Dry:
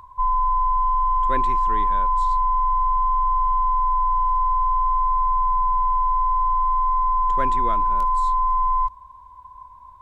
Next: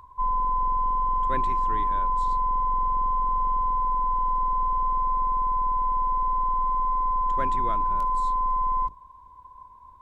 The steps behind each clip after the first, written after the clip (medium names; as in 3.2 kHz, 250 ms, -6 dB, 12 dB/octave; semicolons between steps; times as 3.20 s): octave divider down 1 oct, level -5 dB; trim -4.5 dB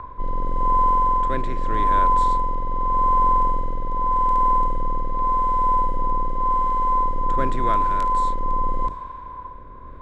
spectral levelling over time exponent 0.6; rotary cabinet horn 0.85 Hz; level-controlled noise filter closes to 2 kHz, open at -20.5 dBFS; trim +7 dB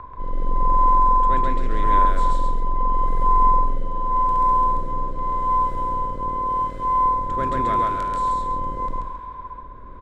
loudspeakers at several distances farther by 46 m -1 dB, 93 m -11 dB; trim -2.5 dB